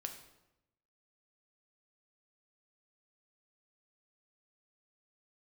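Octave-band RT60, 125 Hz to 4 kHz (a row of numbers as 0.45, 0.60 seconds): 1.1, 1.0, 0.95, 0.85, 0.75, 0.70 seconds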